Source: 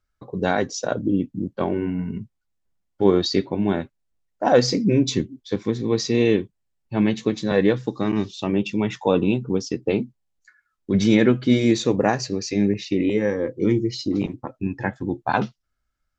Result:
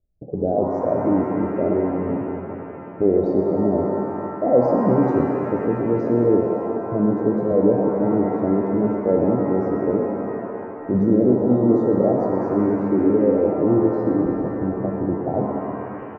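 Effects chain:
elliptic low-pass filter 660 Hz, stop band 40 dB
dynamic equaliser 160 Hz, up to −6 dB, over −33 dBFS, Q 0.81
in parallel at +1 dB: brickwall limiter −17.5 dBFS, peak gain reduction 10 dB
on the sum: echo with shifted repeats 120 ms, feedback 45%, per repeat +84 Hz, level −11 dB
reverb with rising layers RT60 3.2 s, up +7 semitones, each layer −8 dB, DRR 1.5 dB
level −1.5 dB

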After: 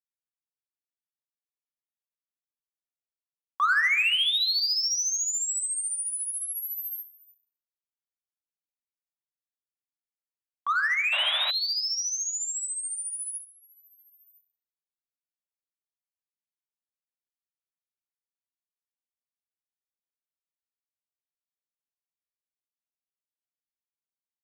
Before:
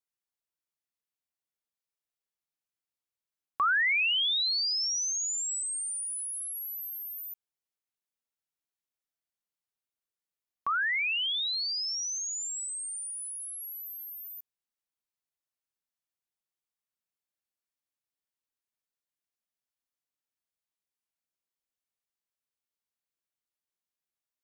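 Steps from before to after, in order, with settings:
noise gate with hold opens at −31 dBFS
rectangular room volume 3,500 cubic metres, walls furnished, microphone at 1.9 metres
in parallel at −8 dB: hard clipping −29.5 dBFS, distortion −8 dB
on the sum: sound drawn into the spectrogram noise, 0:11.12–0:11.51, 550–3,900 Hz −32 dBFS

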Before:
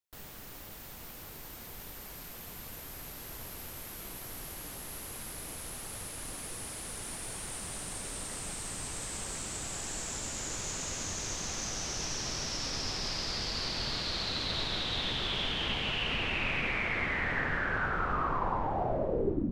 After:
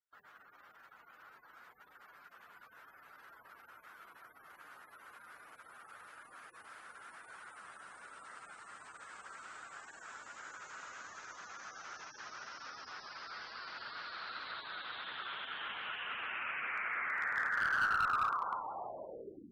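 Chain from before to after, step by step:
gate on every frequency bin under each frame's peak −20 dB strong
resonant band-pass 1,400 Hz, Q 3.9
asymmetric clip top −32.5 dBFS
level +4 dB

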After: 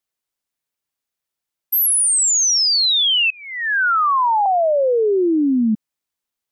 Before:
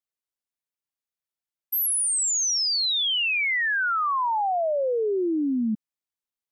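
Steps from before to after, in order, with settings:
0:03.30–0:04.46: Butterworth low-pass 1,700 Hz 48 dB per octave
level +8 dB

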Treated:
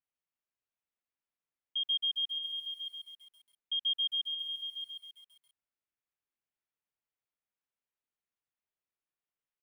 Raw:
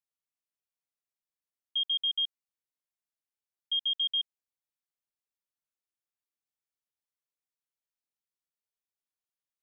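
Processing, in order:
low-pass filter 3,100 Hz 24 dB per octave
single-tap delay 629 ms −7.5 dB
feedback echo at a low word length 134 ms, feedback 55%, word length 11 bits, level −3.5 dB

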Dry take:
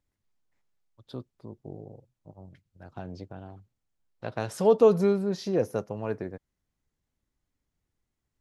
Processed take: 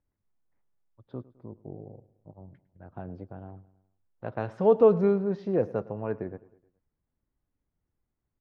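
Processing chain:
low-pass filter 1,900 Hz 12 dB per octave
repeating echo 105 ms, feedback 53%, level −20 dB
one half of a high-frequency compander decoder only

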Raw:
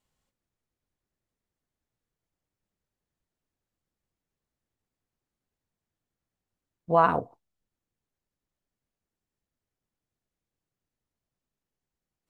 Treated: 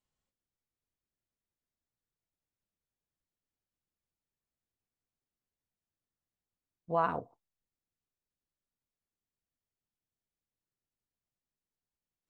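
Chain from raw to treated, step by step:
Butterworth low-pass 9,100 Hz
level −9 dB

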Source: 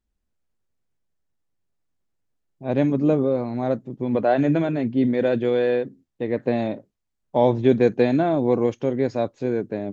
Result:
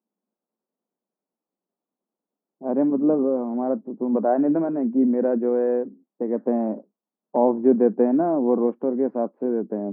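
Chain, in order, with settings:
low-pass filter 1,100 Hz 24 dB per octave
dynamic equaliser 560 Hz, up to −5 dB, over −30 dBFS, Q 0.95
elliptic high-pass filter 200 Hz, stop band 60 dB
level +3.5 dB

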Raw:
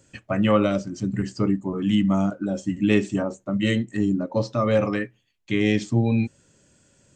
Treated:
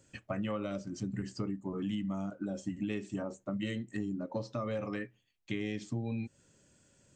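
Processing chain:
downward compressor, threshold −26 dBFS, peak gain reduction 12.5 dB
level −6.5 dB

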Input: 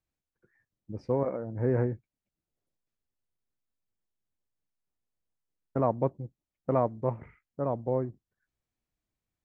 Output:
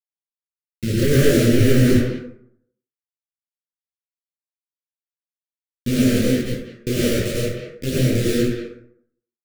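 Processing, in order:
spectrum averaged block by block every 50 ms
source passing by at 0:01.97, 25 m/s, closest 18 metres
leveller curve on the samples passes 5
downward compressor 3 to 1, threshold −27 dBFS, peak gain reduction 6 dB
bit-depth reduction 6 bits, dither none
phase shifter 0.25 Hz, delay 4.5 ms, feedback 30%
Butterworth band-reject 900 Hz, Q 0.54
far-end echo of a speakerphone 190 ms, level −7 dB
dense smooth reverb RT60 0.67 s, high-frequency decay 0.5×, pre-delay 85 ms, DRR −5.5 dB
boost into a limiter +14.5 dB
micro pitch shift up and down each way 53 cents
level −1 dB

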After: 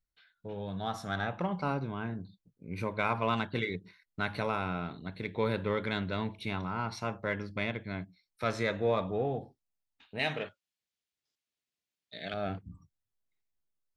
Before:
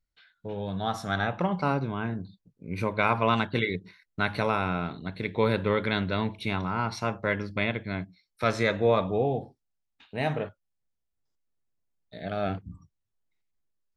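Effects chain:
0:10.19–0:12.34: meter weighting curve D
in parallel at −12 dB: soft clipping −25 dBFS, distortion −8 dB
on the sum: level −7 dB

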